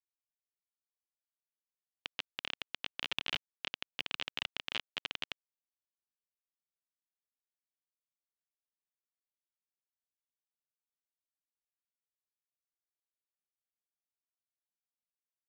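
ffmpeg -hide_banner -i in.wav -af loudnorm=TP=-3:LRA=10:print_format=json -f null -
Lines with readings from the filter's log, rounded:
"input_i" : "-39.8",
"input_tp" : "-16.3",
"input_lra" : "7.0",
"input_thresh" : "-49.8",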